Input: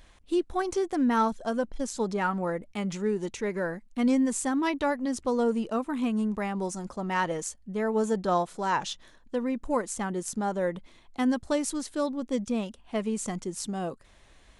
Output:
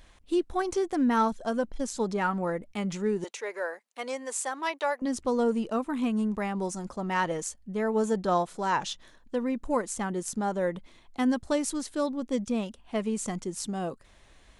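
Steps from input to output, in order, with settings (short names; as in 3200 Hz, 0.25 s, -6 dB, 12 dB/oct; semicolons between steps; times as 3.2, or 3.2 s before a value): 3.24–5.02 HPF 470 Hz 24 dB/oct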